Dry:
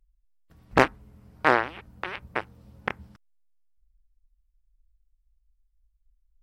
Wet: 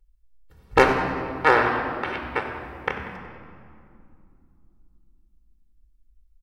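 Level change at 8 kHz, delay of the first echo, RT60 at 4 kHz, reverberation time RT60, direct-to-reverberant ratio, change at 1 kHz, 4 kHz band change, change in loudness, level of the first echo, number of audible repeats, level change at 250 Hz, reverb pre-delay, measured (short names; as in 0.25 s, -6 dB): n/a, 95 ms, 1.5 s, 2.5 s, 3.0 dB, +4.5 dB, +3.0 dB, +4.0 dB, -14.0 dB, 1, +3.5 dB, 4 ms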